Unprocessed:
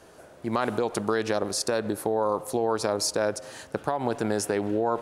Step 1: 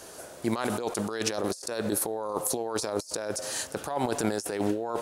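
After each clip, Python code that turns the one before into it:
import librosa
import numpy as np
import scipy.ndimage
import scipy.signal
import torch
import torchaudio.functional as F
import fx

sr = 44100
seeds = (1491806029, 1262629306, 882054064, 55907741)

y = fx.bass_treble(x, sr, bass_db=-4, treble_db=11)
y = fx.over_compress(y, sr, threshold_db=-29.0, ratio=-0.5)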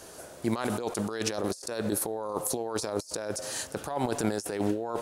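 y = fx.low_shelf(x, sr, hz=210.0, db=4.5)
y = y * 10.0 ** (-2.0 / 20.0)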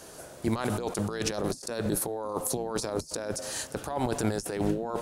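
y = fx.octave_divider(x, sr, octaves=1, level_db=-4.0)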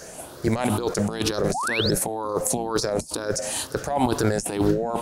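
y = fx.spec_ripple(x, sr, per_octave=0.56, drift_hz=2.1, depth_db=9)
y = fx.spec_paint(y, sr, seeds[0], shape='rise', start_s=1.54, length_s=0.37, low_hz=680.0, high_hz=5500.0, level_db=-32.0)
y = y * 10.0 ** (5.5 / 20.0)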